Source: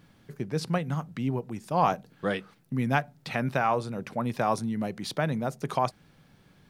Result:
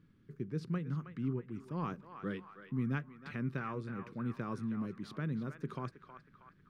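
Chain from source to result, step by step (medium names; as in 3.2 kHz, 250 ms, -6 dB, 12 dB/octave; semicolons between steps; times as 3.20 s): FFT filter 390 Hz 0 dB, 730 Hz -22 dB, 1.2 kHz -5 dB, 11 kHz -18 dB; on a send: band-passed feedback delay 318 ms, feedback 59%, band-pass 1.5 kHz, level -8 dB; on the sum: trim -6.5 dB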